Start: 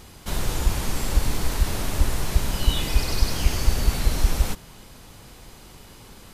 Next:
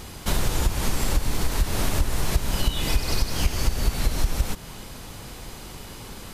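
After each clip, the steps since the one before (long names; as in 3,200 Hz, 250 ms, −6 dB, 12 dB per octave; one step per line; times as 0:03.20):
downward compressor 6 to 1, threshold −24 dBFS, peak gain reduction 13.5 dB
level +6.5 dB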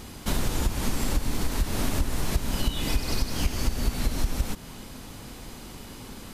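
parametric band 250 Hz +7 dB 0.59 octaves
level −3.5 dB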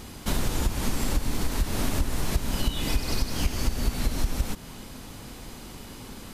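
no processing that can be heard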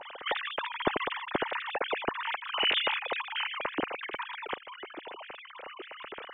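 three sine waves on the formant tracks
level −8.5 dB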